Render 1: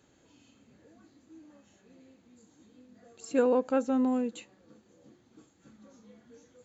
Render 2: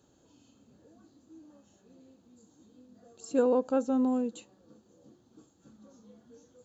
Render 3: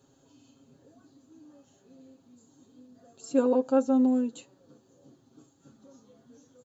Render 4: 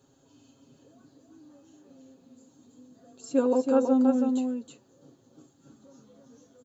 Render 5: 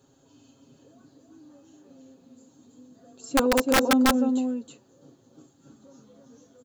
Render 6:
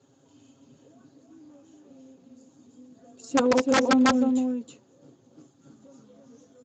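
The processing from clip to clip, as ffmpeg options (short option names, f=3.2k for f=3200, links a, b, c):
-af "equalizer=f=2.1k:w=2.1:g=-14.5"
-af "aecho=1:1:7.4:0.74"
-af "aecho=1:1:324:0.596"
-af "aeval=exprs='(mod(5.62*val(0)+1,2)-1)/5.62':c=same,volume=2dB"
-ar 16000 -c:a libspeex -b:a 17k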